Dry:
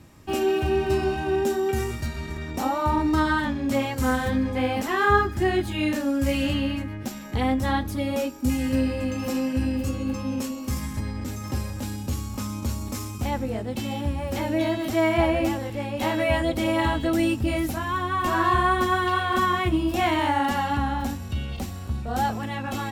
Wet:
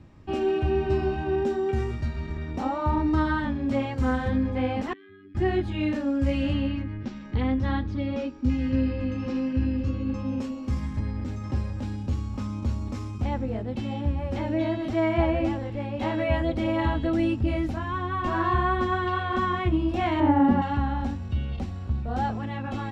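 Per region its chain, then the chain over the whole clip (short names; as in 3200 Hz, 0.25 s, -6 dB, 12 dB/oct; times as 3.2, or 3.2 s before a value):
4.93–5.35 robotiser 97 Hz + compressor 3:1, threshold -26 dBFS + vowel filter i
6.68–10.14 LPF 6100 Hz 24 dB/oct + bell 700 Hz -9 dB 0.45 oct
20.2–20.62 LPF 1400 Hz 6 dB/oct + bell 240 Hz +11 dB 2.4 oct
whole clip: LPF 4700 Hz 12 dB/oct; tilt -1.5 dB/oct; gain -4 dB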